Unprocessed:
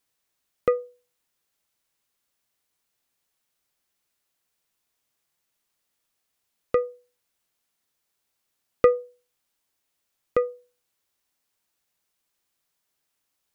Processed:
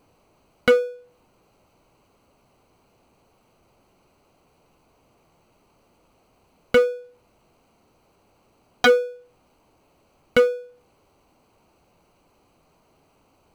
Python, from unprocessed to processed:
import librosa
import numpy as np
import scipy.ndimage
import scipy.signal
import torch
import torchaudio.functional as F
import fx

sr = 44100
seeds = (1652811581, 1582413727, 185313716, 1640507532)

y = fx.wiener(x, sr, points=25)
y = 10.0 ** (-18.0 / 20.0) * (np.abs((y / 10.0 ** (-18.0 / 20.0) + 3.0) % 4.0 - 2.0) - 1.0)
y = fx.power_curve(y, sr, exponent=0.7)
y = y * librosa.db_to_amplitude(8.5)